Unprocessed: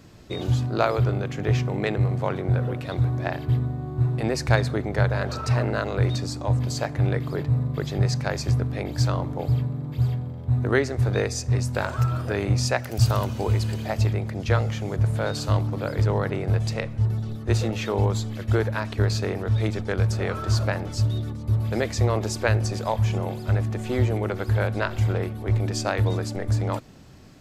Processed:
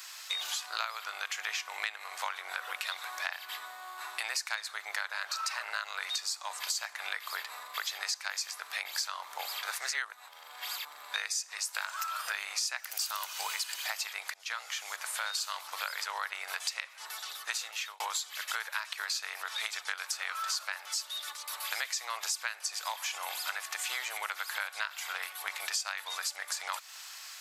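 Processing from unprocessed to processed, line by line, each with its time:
9.63–11.14 s: reverse
14.34–15.44 s: fade in, from -21 dB
17.37–18.00 s: fade out
whole clip: high-pass 990 Hz 24 dB/octave; tilt EQ +3 dB/octave; compression 6:1, threshold -40 dBFS; trim +7.5 dB

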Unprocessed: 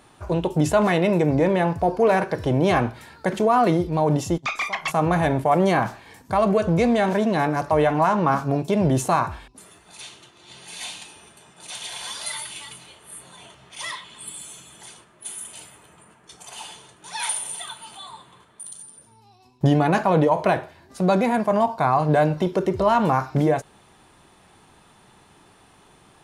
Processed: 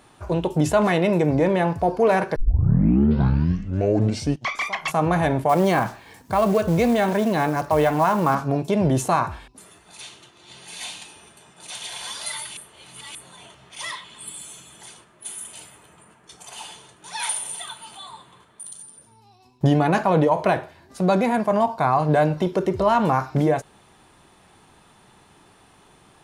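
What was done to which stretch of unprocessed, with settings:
2.36 s: tape start 2.31 s
5.49–8.35 s: companded quantiser 6-bit
12.57–13.15 s: reverse

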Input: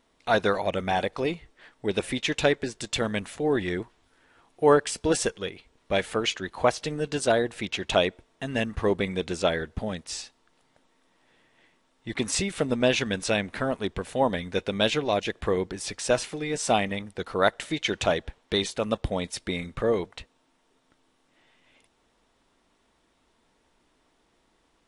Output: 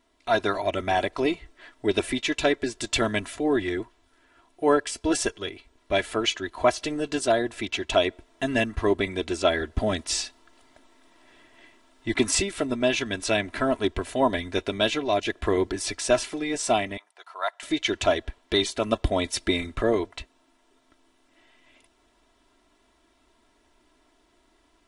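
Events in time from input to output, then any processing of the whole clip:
16.97–17.63 s: ladder high-pass 690 Hz, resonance 40%
whole clip: comb 3 ms, depth 71%; gain riding 0.5 s

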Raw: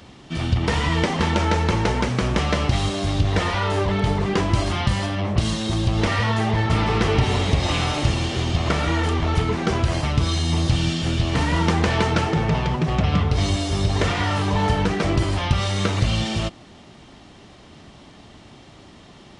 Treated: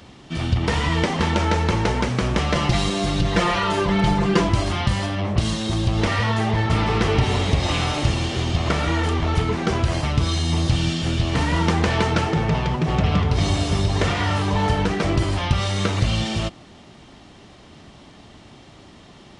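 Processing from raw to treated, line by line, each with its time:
2.55–4.49 s: comb 5.8 ms, depth 95%
12.28–13.23 s: echo throw 570 ms, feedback 50%, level -8 dB

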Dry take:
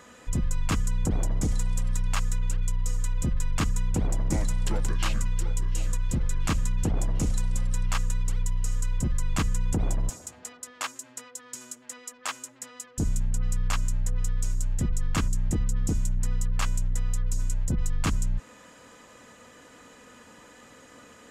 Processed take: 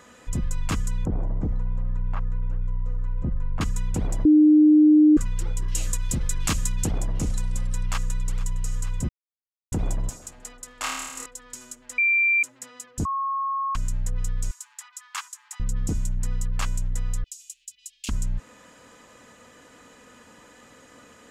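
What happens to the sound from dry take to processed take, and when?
1.05–3.61 s: low-pass 1.1 kHz
4.25–5.17 s: bleep 304 Hz -11 dBFS
5.68–6.98 s: treble shelf 3.2 kHz +10.5 dB
7.55–8.32 s: echo throw 460 ms, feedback 70%, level -16 dB
9.09–9.72 s: mute
10.79–11.26 s: flutter echo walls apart 4.6 m, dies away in 1.1 s
11.98–12.43 s: bleep 2.36 kHz -17 dBFS
13.05–13.75 s: bleep 1.09 kHz -23.5 dBFS
14.51–15.60 s: steep high-pass 840 Hz 72 dB/octave
17.24–18.09 s: elliptic high-pass 2.7 kHz, stop band 60 dB

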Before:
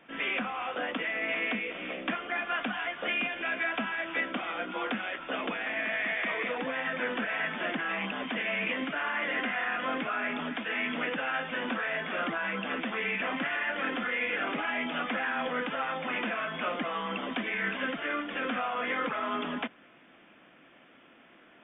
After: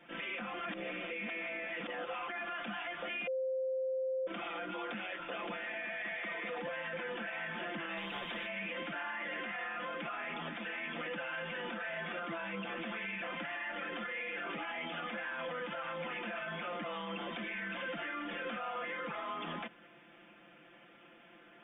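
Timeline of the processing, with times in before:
0.53–2.28 s: reverse
3.27–4.27 s: bleep 523 Hz -21 dBFS
7.97–8.47 s: spectrum-flattening compressor 2:1
whole clip: band-stop 1.1 kHz, Q 20; comb 5.8 ms, depth 88%; peak limiter -28 dBFS; trim -4 dB

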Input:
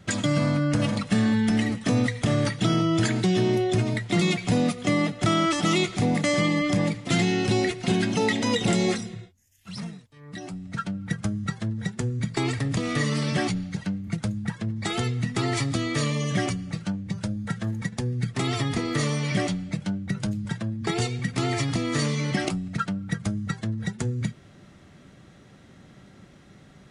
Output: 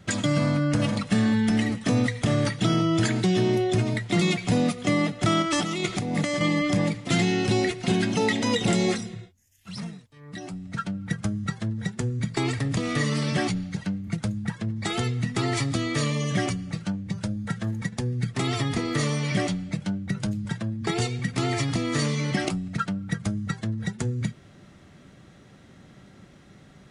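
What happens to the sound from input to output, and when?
5.42–6.41 s: compressor with a negative ratio -25 dBFS, ratio -0.5

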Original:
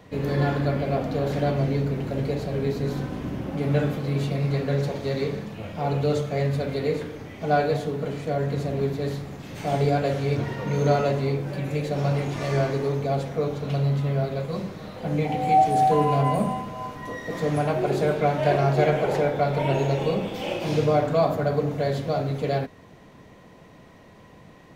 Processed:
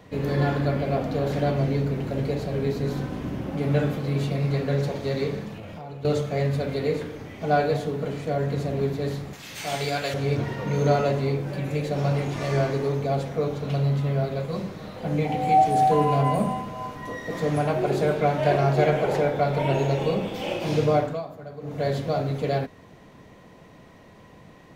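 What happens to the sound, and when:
5.55–6.05 s: compression 10:1, threshold -34 dBFS
9.33–10.14 s: tilt shelf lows -9.5 dB, about 1.1 kHz
20.97–21.86 s: dip -15.5 dB, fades 0.26 s

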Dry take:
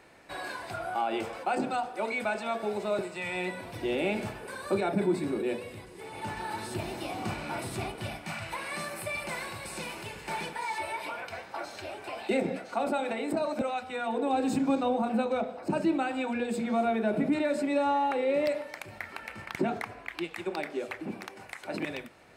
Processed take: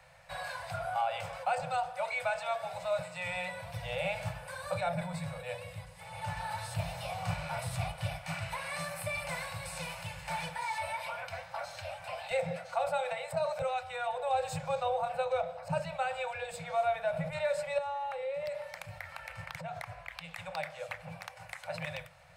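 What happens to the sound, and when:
17.78–20.40 s: compression 3:1, threshold -34 dBFS
whole clip: Chebyshev band-stop 170–510 Hz, order 5; bass shelf 240 Hz +7 dB; trim -1.5 dB

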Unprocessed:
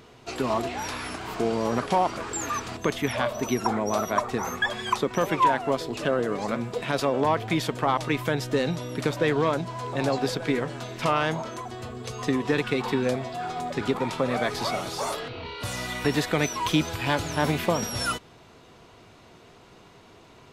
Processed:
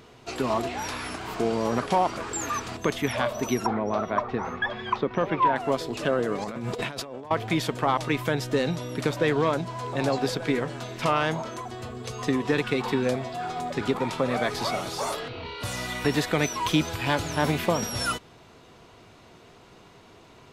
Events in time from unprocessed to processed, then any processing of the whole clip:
3.66–5.56 s: distance through air 270 m
6.44–7.31 s: compressor with a negative ratio -35 dBFS

